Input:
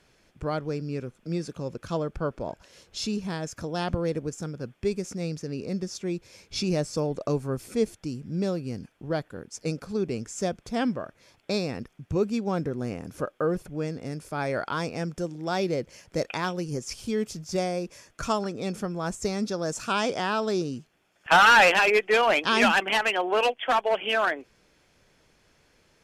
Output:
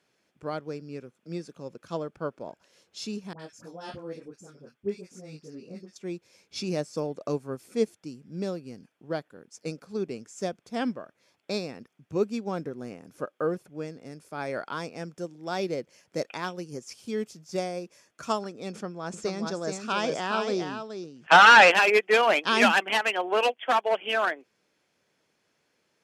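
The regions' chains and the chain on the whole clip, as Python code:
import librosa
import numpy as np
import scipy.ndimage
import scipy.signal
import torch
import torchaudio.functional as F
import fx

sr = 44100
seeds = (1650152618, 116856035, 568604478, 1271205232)

y = fx.chain(x, sr, fx.dispersion(late='highs', ms=65.0, hz=1100.0),
    fx.detune_double(cents=17), at=(3.33, 5.96))
y = fx.chain(y, sr, fx.lowpass(hz=7000.0, slope=12),
    fx.echo_single(ms=425, db=-5.5),
    fx.sustainer(db_per_s=69.0), at=(18.71, 21.71))
y = scipy.signal.sosfilt(scipy.signal.butter(2, 170.0, 'highpass', fs=sr, output='sos'), y)
y = fx.upward_expand(y, sr, threshold_db=-38.0, expansion=1.5)
y = y * 10.0 ** (3.0 / 20.0)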